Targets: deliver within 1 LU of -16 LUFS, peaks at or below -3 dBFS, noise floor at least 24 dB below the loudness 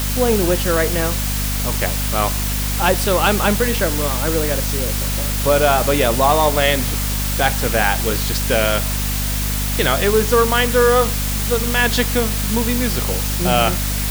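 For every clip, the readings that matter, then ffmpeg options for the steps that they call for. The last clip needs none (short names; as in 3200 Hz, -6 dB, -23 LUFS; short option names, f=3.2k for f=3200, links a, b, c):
hum 50 Hz; harmonics up to 250 Hz; hum level -20 dBFS; noise floor -21 dBFS; noise floor target -42 dBFS; loudness -17.5 LUFS; peak -1.5 dBFS; loudness target -16.0 LUFS
-> -af "bandreject=f=50:t=h:w=6,bandreject=f=100:t=h:w=6,bandreject=f=150:t=h:w=6,bandreject=f=200:t=h:w=6,bandreject=f=250:t=h:w=6"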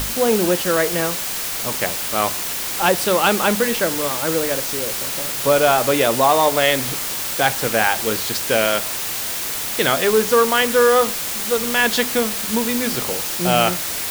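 hum none; noise floor -25 dBFS; noise floor target -42 dBFS
-> -af "afftdn=nr=17:nf=-25"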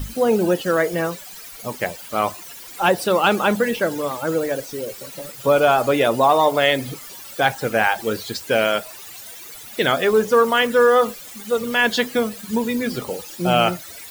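noise floor -38 dBFS; noise floor target -44 dBFS
-> -af "afftdn=nr=6:nf=-38"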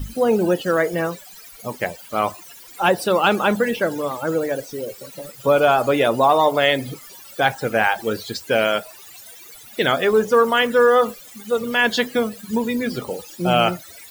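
noise floor -43 dBFS; noise floor target -44 dBFS
-> -af "afftdn=nr=6:nf=-43"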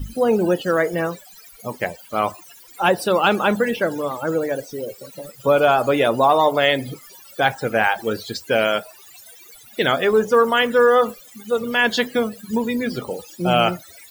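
noise floor -46 dBFS; loudness -19.5 LUFS; peak -3.5 dBFS; loudness target -16.0 LUFS
-> -af "volume=3.5dB,alimiter=limit=-3dB:level=0:latency=1"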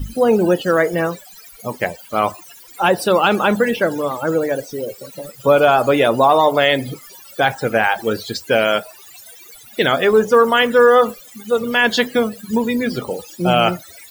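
loudness -16.5 LUFS; peak -3.0 dBFS; noise floor -42 dBFS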